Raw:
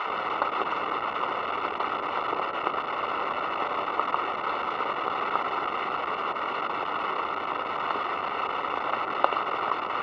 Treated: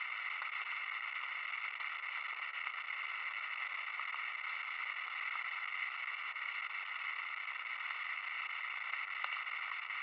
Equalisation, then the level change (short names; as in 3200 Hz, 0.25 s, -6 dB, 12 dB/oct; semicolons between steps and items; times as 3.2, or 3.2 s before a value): ladder band-pass 2300 Hz, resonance 70%; +1.0 dB